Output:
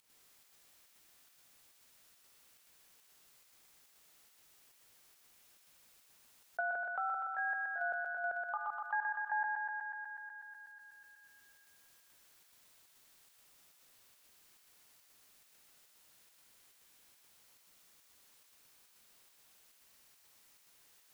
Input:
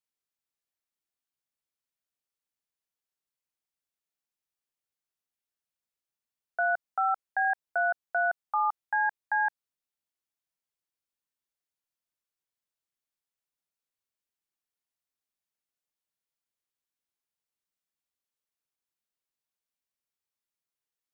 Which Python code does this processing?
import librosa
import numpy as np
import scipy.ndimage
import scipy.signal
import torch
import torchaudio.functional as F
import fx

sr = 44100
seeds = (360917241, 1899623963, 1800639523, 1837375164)

y = fx.dynamic_eq(x, sr, hz=930.0, q=1.0, threshold_db=-39.0, ratio=4.0, max_db=-7, at=(6.6, 8.8))
y = fx.volume_shaper(y, sr, bpm=140, per_beat=1, depth_db=-17, release_ms=94.0, shape='slow start')
y = fx.echo_thinned(y, sr, ms=123, feedback_pct=72, hz=610.0, wet_db=-4.5)
y = fx.env_flatten(y, sr, amount_pct=50)
y = y * librosa.db_to_amplitude(-8.0)